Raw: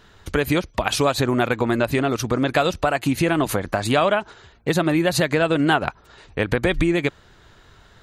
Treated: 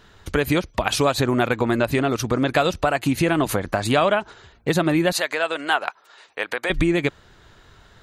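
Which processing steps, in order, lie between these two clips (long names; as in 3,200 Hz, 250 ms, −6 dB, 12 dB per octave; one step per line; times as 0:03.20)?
0:05.12–0:06.70: high-pass filter 670 Hz 12 dB per octave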